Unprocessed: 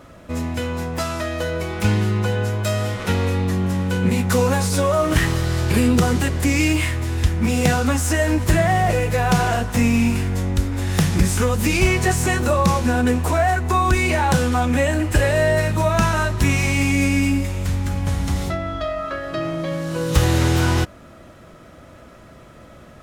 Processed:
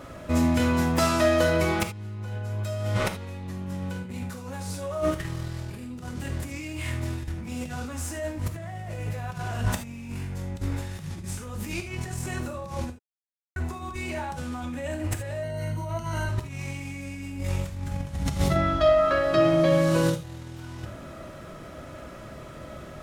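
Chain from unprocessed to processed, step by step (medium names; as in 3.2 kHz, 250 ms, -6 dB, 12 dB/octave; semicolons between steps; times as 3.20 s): dynamic bell 110 Hz, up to +6 dB, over -30 dBFS, Q 1.1; compressor with a negative ratio -22 dBFS, ratio -0.5; 12.90–13.56 s: mute; 15.43–16.29 s: rippled EQ curve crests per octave 1.9, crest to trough 16 dB; gated-style reverb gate 100 ms flat, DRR 6 dB; trim -5.5 dB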